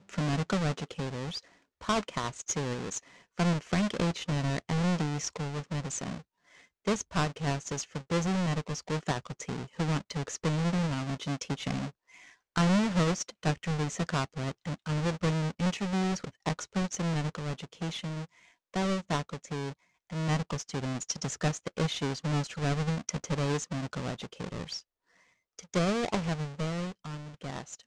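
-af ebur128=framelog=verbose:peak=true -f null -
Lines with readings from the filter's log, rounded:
Integrated loudness:
  I:         -32.4 LUFS
  Threshold: -42.6 LUFS
Loudness range:
  LRA:         3.8 LU
  Threshold: -52.6 LUFS
  LRA low:   -34.5 LUFS
  LRA high:  -30.7 LUFS
True peak:
  Peak:      -16.4 dBFS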